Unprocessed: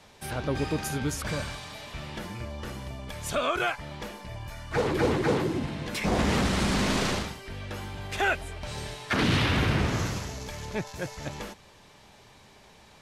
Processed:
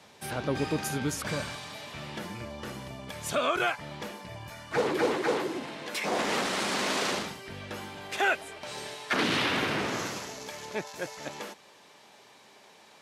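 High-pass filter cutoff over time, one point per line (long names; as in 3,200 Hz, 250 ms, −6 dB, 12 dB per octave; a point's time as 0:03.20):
0:04.47 130 Hz
0:05.19 380 Hz
0:07.02 380 Hz
0:07.46 110 Hz
0:08.17 280 Hz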